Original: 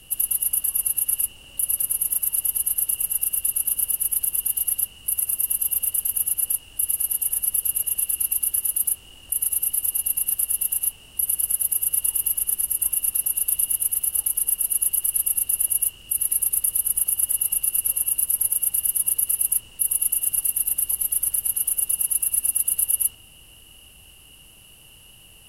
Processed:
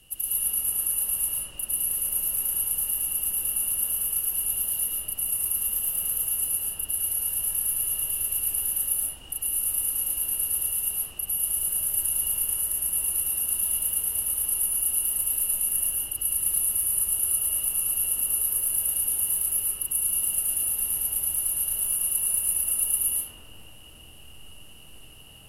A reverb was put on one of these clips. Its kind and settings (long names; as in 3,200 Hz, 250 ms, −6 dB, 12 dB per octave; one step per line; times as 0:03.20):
comb and all-pass reverb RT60 3 s, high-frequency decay 0.3×, pre-delay 90 ms, DRR −9 dB
level −8 dB